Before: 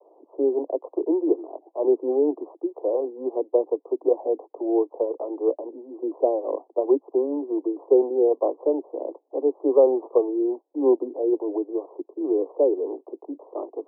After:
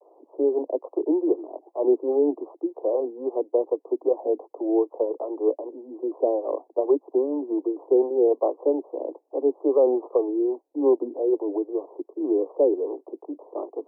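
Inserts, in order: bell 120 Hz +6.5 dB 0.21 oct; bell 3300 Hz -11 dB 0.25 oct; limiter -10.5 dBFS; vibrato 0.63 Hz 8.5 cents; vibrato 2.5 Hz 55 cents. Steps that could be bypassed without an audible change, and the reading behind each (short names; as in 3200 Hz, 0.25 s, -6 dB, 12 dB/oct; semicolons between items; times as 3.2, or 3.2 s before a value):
bell 120 Hz: input band starts at 240 Hz; bell 3300 Hz: input band ends at 1000 Hz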